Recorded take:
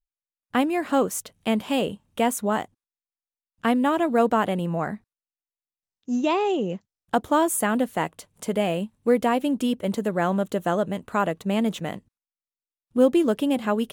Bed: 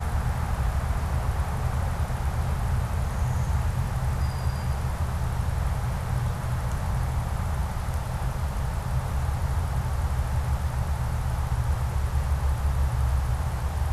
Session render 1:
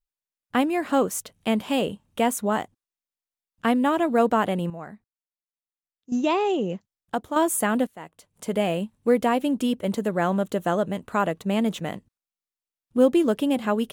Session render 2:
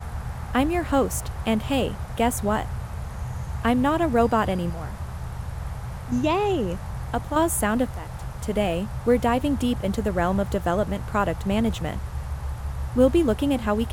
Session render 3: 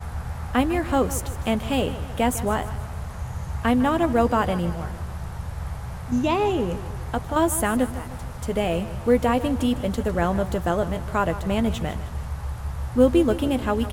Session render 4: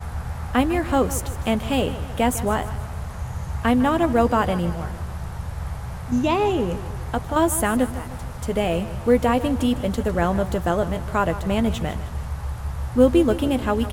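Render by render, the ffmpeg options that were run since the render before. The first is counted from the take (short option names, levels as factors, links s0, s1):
-filter_complex "[0:a]asplit=5[s0][s1][s2][s3][s4];[s0]atrim=end=4.702[s5];[s1]atrim=start=4.698:end=6.122,asetpts=PTS-STARTPTS,volume=0.282[s6];[s2]atrim=start=6.118:end=7.36,asetpts=PTS-STARTPTS,afade=t=out:st=0.582:d=0.66:silence=0.375837[s7];[s3]atrim=start=7.36:end=7.87,asetpts=PTS-STARTPTS,afade=t=in:d=0.004:c=hsin:silence=0.375837,afade=t=out:st=0.506:d=0.004:c=hsin:silence=0.149624[s8];[s4]atrim=start=7.87,asetpts=PTS-STARTPTS,afade=t=in:d=0.68:c=qua:silence=0.149624[s9];[s5][s6]acrossfade=d=0.004:c1=hsin:c2=hsin[s10];[s7][s8][s9]concat=n=3:v=0:a=1[s11];[s10][s11]acrossfade=d=0.004:c1=hsin:c2=hsin"
-filter_complex "[1:a]volume=0.531[s0];[0:a][s0]amix=inputs=2:normalize=0"
-filter_complex "[0:a]asplit=2[s0][s1];[s1]adelay=12,volume=0.251[s2];[s0][s2]amix=inputs=2:normalize=0,aecho=1:1:154|308|462|616|770:0.188|0.0923|0.0452|0.0222|0.0109"
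-af "volume=1.19"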